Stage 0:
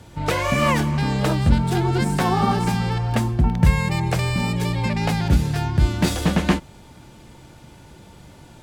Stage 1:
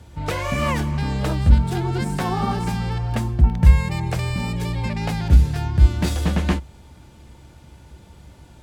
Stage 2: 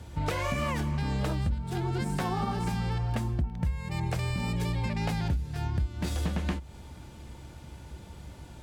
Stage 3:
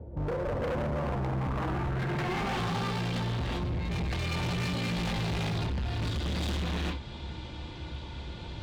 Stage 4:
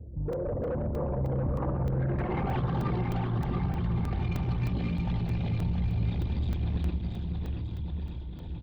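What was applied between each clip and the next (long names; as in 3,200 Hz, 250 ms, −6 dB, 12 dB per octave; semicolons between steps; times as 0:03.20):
parametric band 66 Hz +13.5 dB 0.64 octaves; level −4 dB
downward compressor 12 to 1, threshold −26 dBFS, peak gain reduction 20.5 dB
reverb whose tail is shaped and stops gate 420 ms rising, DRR −4 dB; low-pass filter sweep 520 Hz → 3,700 Hz, 0:00.83–0:02.75; hard clipping −29 dBFS, distortion −6 dB
spectral envelope exaggerated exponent 2; on a send: bouncing-ball delay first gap 680 ms, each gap 0.8×, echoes 5; on the sum: regular buffer underruns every 0.31 s, samples 128, zero, from 0:00.33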